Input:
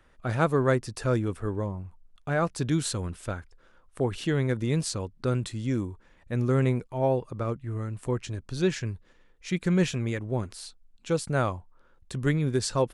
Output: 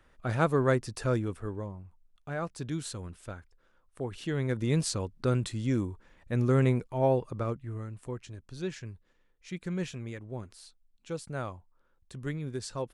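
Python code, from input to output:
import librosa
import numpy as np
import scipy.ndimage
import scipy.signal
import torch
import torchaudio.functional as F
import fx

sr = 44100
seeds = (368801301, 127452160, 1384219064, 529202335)

y = fx.gain(x, sr, db=fx.line((1.03, -2.0), (1.8, -8.5), (4.09, -8.5), (4.74, -0.5), (7.31, -0.5), (8.19, -10.0)))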